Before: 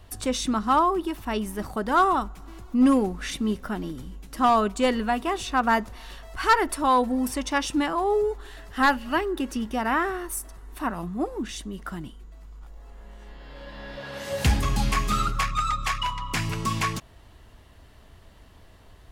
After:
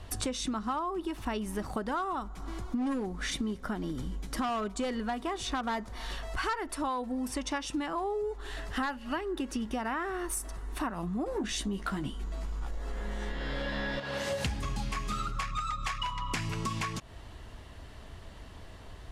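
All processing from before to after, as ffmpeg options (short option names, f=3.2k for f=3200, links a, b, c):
-filter_complex "[0:a]asettb=1/sr,asplit=3[a][b][c];[a]atrim=end=2.214[d];[b]atrim=start=2.21:end=6.13,asetpts=PTS-STARTPTS,afade=t=in:d=0.004:c=qsin,afade=t=out:st=3.916:d=0.004:c=qsin,bandreject=f=2.7k:w=11,asoftclip=type=hard:threshold=-18.5dB[e];[c]atrim=start=6.126[f];[d][e]acrossfade=d=0.004:c1=hsin:c2=qsin[g];[g][f]acrossfade=d=0.004:c1=qsin:c2=hsin,asettb=1/sr,asplit=3[h][i][j];[h]atrim=end=11.264[k];[i]atrim=start=11.26:end=14,asetpts=PTS-STARTPTS,afade=t=in:d=0.004:c=qsin,afade=t=out:st=2.736:d=0.004:c=qsin,equalizer=f=70:w=1.1:g=-5,aeval=exprs='0.0841*sin(PI/2*1.58*val(0)/0.0841)':c=same,asplit=2[l][m];[m]adelay=15,volume=-5dB[n];[l][n]amix=inputs=2:normalize=0,atrim=end_sample=120834[o];[j]atrim=start=13.996[p];[k][o]acrossfade=d=0.004:c1=hsin:c2=qsin[q];[q][p]acrossfade=d=0.004:c1=qsin:c2=hsin,lowpass=10k,acompressor=threshold=-34dB:ratio=12,volume=4dB"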